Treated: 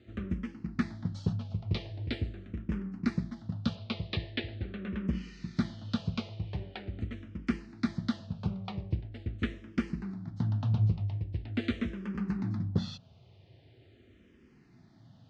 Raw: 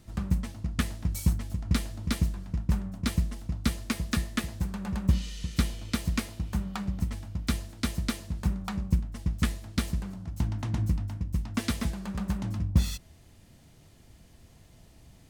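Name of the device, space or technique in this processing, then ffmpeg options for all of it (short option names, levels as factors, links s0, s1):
barber-pole phaser into a guitar amplifier: -filter_complex "[0:a]asplit=2[s0][s1];[s1]afreqshift=-0.43[s2];[s0][s2]amix=inputs=2:normalize=1,asoftclip=type=tanh:threshold=0.112,highpass=100,equalizer=f=110:t=q:w=4:g=8,equalizer=f=240:t=q:w=4:g=4,equalizer=f=380:t=q:w=4:g=7,equalizer=f=1000:t=q:w=4:g=-5,lowpass=f=4200:w=0.5412,lowpass=f=4200:w=1.3066,asettb=1/sr,asplit=3[s3][s4][s5];[s3]atrim=end=3.754[s6];[s4]atrim=start=3.75:end=5.08,asetpts=PTS-STARTPTS,afade=t=in:d=0.004:c=qsin,afade=t=out:st=1.326:d=0.004:c=qsin,highshelf=f=5800:t=q:w=1.5:g=-12.5[s7];[s5]atrim=start=5.076[s8];[s6][s7]acrossfade=d=0.004:c1=hsin:c2=qsin[s9];[s9][s8]acrossfade=d=0.004:c1=qsin:c2=hsin"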